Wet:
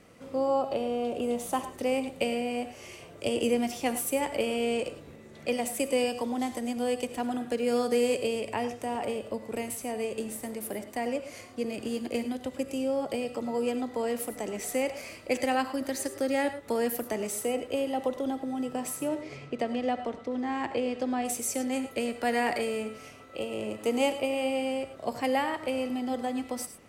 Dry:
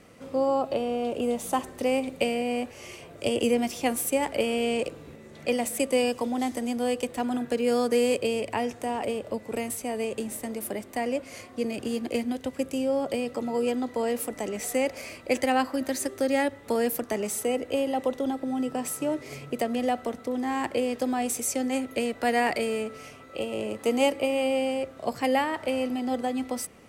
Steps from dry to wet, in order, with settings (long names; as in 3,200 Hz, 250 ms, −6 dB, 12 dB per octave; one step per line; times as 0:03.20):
0:19.21–0:21.25: low-pass filter 4,800 Hz 12 dB per octave
reverb whose tail is shaped and stops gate 130 ms rising, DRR 10.5 dB
level −3 dB